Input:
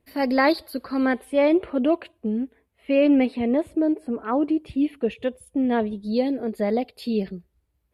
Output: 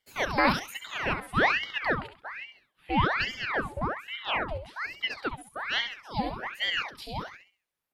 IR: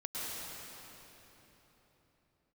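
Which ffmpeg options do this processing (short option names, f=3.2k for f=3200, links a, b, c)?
-filter_complex "[0:a]highpass=530,asplit=2[a][b];[b]aecho=0:1:67|134|201|268:0.398|0.123|0.0383|0.0119[c];[a][c]amix=inputs=2:normalize=0,aeval=exprs='val(0)*sin(2*PI*1400*n/s+1400*0.85/1.2*sin(2*PI*1.2*n/s))':c=same"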